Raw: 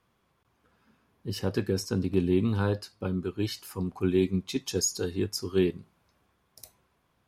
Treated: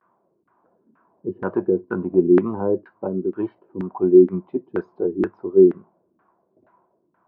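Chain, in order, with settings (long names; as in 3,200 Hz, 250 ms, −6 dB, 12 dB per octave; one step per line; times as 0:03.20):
pitch vibrato 0.38 Hz 42 cents
loudspeaker in its box 170–3,200 Hz, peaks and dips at 190 Hz +5 dB, 350 Hz +10 dB, 640 Hz +8 dB, 980 Hz +9 dB, 1,500 Hz +5 dB
auto-filter low-pass saw down 2.1 Hz 260–1,600 Hz
level −1 dB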